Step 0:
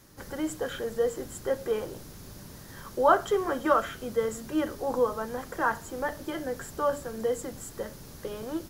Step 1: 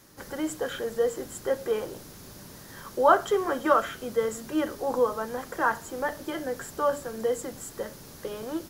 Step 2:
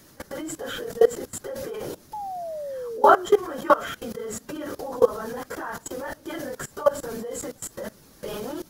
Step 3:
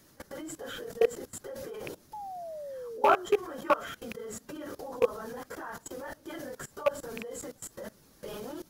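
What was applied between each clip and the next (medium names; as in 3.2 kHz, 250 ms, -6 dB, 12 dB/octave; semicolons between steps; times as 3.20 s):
bass shelf 130 Hz -8.5 dB; trim +2 dB
phase randomisation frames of 50 ms; painted sound fall, 2.13–3.26 s, 350–870 Hz -26 dBFS; level held to a coarse grid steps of 20 dB; trim +7.5 dB
rattle on loud lows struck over -32 dBFS, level -15 dBFS; trim -7.5 dB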